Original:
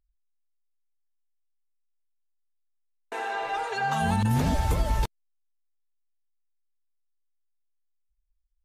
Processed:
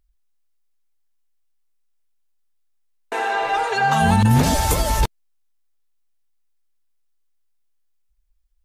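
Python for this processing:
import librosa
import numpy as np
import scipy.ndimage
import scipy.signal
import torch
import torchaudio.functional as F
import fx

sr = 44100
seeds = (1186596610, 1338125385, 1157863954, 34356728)

y = fx.bass_treble(x, sr, bass_db=-6, treble_db=9, at=(4.43, 5.01))
y = y * 10.0 ** (9.0 / 20.0)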